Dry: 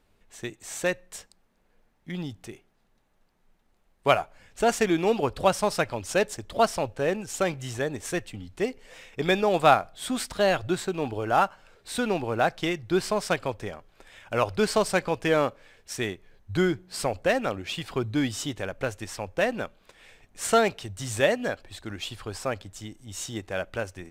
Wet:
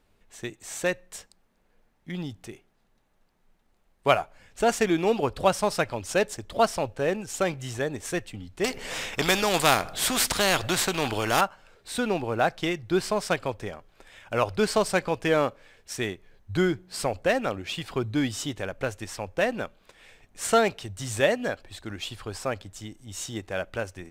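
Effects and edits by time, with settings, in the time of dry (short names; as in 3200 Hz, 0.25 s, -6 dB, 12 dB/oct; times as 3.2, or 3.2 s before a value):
8.64–11.41 spectral compressor 2:1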